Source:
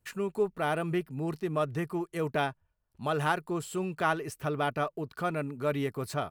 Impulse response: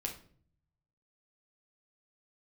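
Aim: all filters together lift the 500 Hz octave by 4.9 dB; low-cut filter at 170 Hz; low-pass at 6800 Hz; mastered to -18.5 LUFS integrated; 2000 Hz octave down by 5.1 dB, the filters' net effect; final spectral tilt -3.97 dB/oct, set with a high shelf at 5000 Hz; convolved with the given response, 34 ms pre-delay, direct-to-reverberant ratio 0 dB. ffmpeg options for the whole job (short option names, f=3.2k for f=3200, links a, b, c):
-filter_complex "[0:a]highpass=170,lowpass=6.8k,equalizer=f=500:t=o:g=7,equalizer=f=2k:t=o:g=-8.5,highshelf=f=5k:g=-3,asplit=2[a][b];[1:a]atrim=start_sample=2205,adelay=34[c];[b][c]afir=irnorm=-1:irlink=0,volume=-0.5dB[d];[a][d]amix=inputs=2:normalize=0,volume=8dB"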